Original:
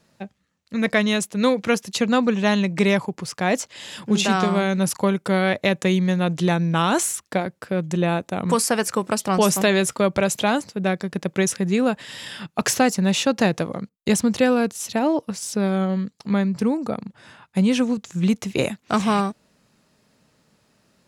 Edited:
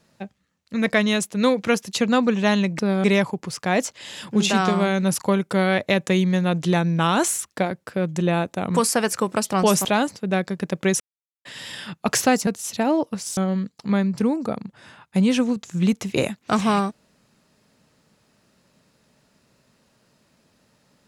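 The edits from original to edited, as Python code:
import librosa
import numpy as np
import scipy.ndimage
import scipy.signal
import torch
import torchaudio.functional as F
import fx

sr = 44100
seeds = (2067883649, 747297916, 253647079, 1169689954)

y = fx.edit(x, sr, fx.cut(start_s=9.6, length_s=0.78),
    fx.silence(start_s=11.53, length_s=0.45),
    fx.cut(start_s=13.0, length_s=1.63),
    fx.move(start_s=15.53, length_s=0.25, to_s=2.79), tone=tone)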